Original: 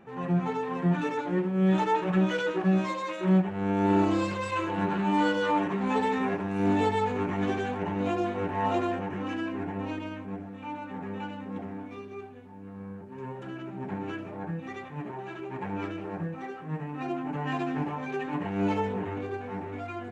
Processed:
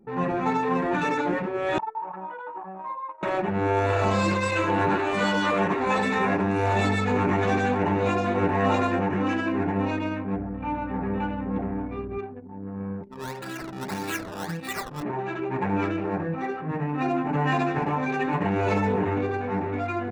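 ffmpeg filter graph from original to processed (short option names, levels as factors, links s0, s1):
-filter_complex "[0:a]asettb=1/sr,asplit=3[s0][s1][s2];[s0]atrim=end=1.784[s3];[s1]atrim=start=1.78:end=3.23,asetpts=PTS-STARTPTS,afade=t=in:d=0.004:c=qsin,afade=t=out:st=1.446:d=0.004:c=qsin,bandpass=f=920:t=q:w=7.2,acompressor=threshold=0.0224:ratio=2:attack=3.2:release=140:knee=1:detection=peak[s4];[s2]atrim=start=3.226[s5];[s3][s4]acrossfade=d=0.004:c1=hsin:c2=qsin[s6];[s6][s5]acrossfade=d=0.004:c1=qsin:c2=hsin,asettb=1/sr,asplit=3[s7][s8][s9];[s7]atrim=end=10.364[s10];[s8]atrim=start=10.36:end=12.19,asetpts=PTS-STARTPTS,afade=t=in:d=0.004:c=qsin,afade=t=out:st=1.826:d=0.004:c=qsin,lowpass=f=2200:p=1,aeval=exprs='val(0)+0.00447*(sin(2*PI*60*n/s)+sin(2*PI*2*60*n/s)/2+sin(2*PI*3*60*n/s)/3+sin(2*PI*4*60*n/s)/4+sin(2*PI*5*60*n/s)/5)':c=same[s11];[s9]atrim=start=12.186[s12];[s10][s11]acrossfade=d=0.004:c1=hsin:c2=qsin[s13];[s13][s12]acrossfade=d=0.004:c1=qsin:c2=hsin,asettb=1/sr,asplit=3[s14][s15][s16];[s14]atrim=end=13.034[s17];[s15]atrim=start=13.03:end=15.03,asetpts=PTS-STARTPTS,afade=t=in:d=0.004:c=qsin,afade=t=out:st=1.996:d=0.004:c=qsin,tiltshelf=f=1200:g=-7.5,acrusher=samples=14:mix=1:aa=0.000001:lfo=1:lforange=14:lforate=1.7[s18];[s16]atrim=start=15.026[s19];[s17][s18]acrossfade=d=0.004:c1=hsin:c2=qsin[s20];[s20][s19]acrossfade=d=0.004:c1=qsin:c2=hsin,afftfilt=real='re*lt(hypot(re,im),0.251)':imag='im*lt(hypot(re,im),0.251)':win_size=1024:overlap=0.75,anlmdn=0.0251,bandreject=f=3100:w=8.6,volume=2.66"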